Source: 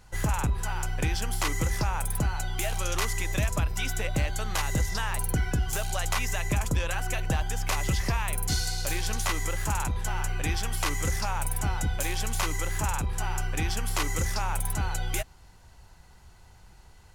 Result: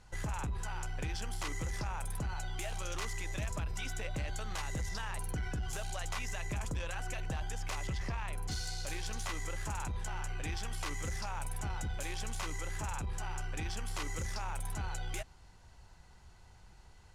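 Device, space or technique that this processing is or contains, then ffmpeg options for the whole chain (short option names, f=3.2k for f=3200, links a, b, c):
soft clipper into limiter: -filter_complex "[0:a]lowpass=9.1k,asettb=1/sr,asplit=3[a][b][c];[a]atrim=end=7.874[d];[b]atrim=start=7.87:end=8.51,asetpts=PTS-STARTPTS,afade=t=in:d=0.004:c=qsin,afade=t=out:st=0.636:d=0.004:c=qsin,aemphasis=mode=reproduction:type=cd[e];[c]atrim=start=8.506[f];[d][e]acrossfade=d=0.004:c1=hsin:c2=qsin[g];[g][f]acrossfade=d=0.004:c1=qsin:c2=hsin,asoftclip=type=tanh:threshold=-20.5dB,alimiter=level_in=2.5dB:limit=-24dB:level=0:latency=1:release=29,volume=-2.5dB,volume=-4.5dB"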